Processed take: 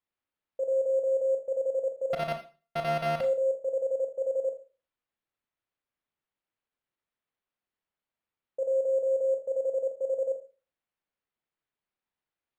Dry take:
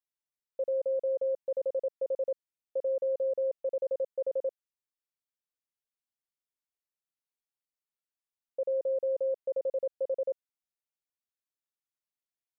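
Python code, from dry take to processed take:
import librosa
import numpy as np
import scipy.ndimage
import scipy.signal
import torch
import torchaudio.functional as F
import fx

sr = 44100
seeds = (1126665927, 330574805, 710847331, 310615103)

y = fx.sample_sort(x, sr, block=64, at=(2.13, 3.21))
y = fx.rev_schroeder(y, sr, rt60_s=0.34, comb_ms=26, drr_db=4.0)
y = np.interp(np.arange(len(y)), np.arange(len(y))[::6], y[::6])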